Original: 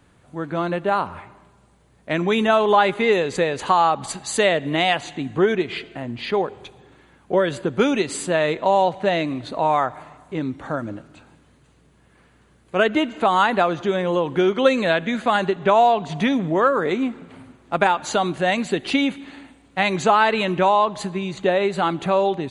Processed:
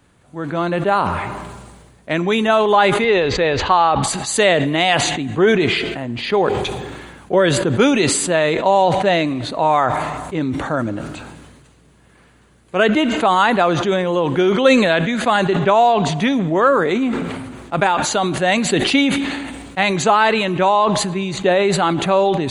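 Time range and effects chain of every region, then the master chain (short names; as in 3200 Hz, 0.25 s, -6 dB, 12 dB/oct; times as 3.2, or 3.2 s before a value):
3.04–4.03 LPF 4800 Hz 24 dB/oct + resonant low shelf 110 Hz +10.5 dB, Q 1.5
whole clip: AGC gain up to 4.5 dB; high shelf 5100 Hz +4 dB; sustainer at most 34 dB/s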